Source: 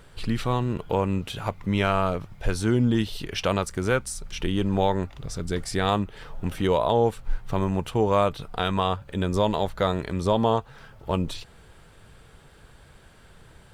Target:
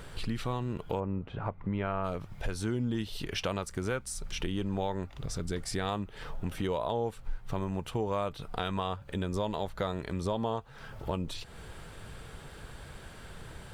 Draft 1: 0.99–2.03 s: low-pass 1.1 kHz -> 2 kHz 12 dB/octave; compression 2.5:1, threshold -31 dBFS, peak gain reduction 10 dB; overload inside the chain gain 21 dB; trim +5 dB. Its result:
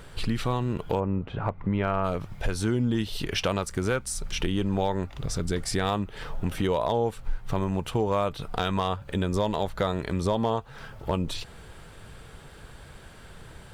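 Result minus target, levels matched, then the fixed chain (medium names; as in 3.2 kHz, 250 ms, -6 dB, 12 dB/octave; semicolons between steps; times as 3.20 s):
compression: peak gain reduction -6.5 dB
0.99–2.03 s: low-pass 1.1 kHz -> 2 kHz 12 dB/octave; compression 2.5:1, threshold -41.5 dBFS, peak gain reduction 16.5 dB; overload inside the chain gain 21 dB; trim +5 dB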